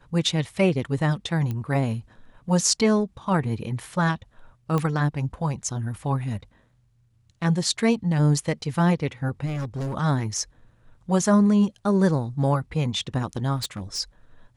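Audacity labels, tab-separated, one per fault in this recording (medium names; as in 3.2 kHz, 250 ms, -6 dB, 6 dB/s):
1.510000	1.510000	pop -18 dBFS
4.780000	4.780000	pop -13 dBFS
9.450000	9.950000	clipped -25.5 dBFS
13.560000	14.000000	clipped -25.5 dBFS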